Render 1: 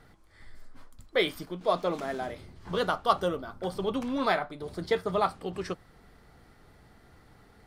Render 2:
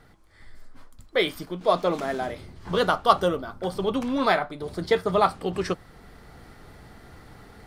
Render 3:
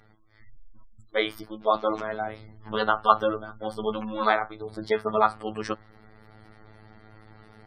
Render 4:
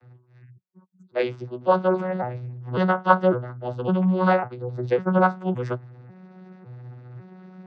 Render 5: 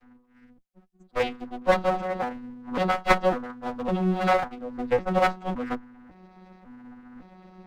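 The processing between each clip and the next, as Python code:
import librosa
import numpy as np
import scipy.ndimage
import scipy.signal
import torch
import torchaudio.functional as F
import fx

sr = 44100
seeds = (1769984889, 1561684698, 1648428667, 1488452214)

y1 = fx.rider(x, sr, range_db=10, speed_s=2.0)
y1 = F.gain(torch.from_numpy(y1), 4.0).numpy()
y2 = fx.robotise(y1, sr, hz=108.0)
y2 = fx.dynamic_eq(y2, sr, hz=1200.0, q=1.2, threshold_db=-38.0, ratio=4.0, max_db=5)
y2 = fx.spec_gate(y2, sr, threshold_db=-30, keep='strong')
y2 = F.gain(torch.from_numpy(y2), -1.5).numpy()
y3 = fx.vocoder_arp(y2, sr, chord='bare fifth', root=47, every_ms=553)
y3 = F.gain(torch.from_numpy(y3), 5.0).numpy()
y4 = fx.lower_of_two(y3, sr, delay_ms=3.9)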